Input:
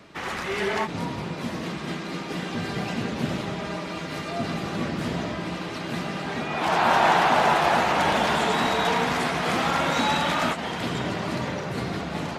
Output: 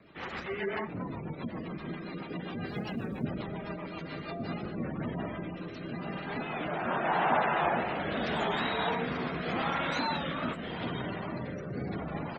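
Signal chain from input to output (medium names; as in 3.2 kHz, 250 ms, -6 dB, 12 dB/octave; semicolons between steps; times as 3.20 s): spectral gate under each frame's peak -20 dB strong; 2.67–3.24 s: companded quantiser 8-bit; rotary cabinet horn 7.5 Hz, later 0.85 Hz, at 3.92 s; on a send: frequency-shifting echo 120 ms, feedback 59%, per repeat -91 Hz, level -22 dB; on the sum: warped record 33 1/3 rpm, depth 100 cents; trim -5 dB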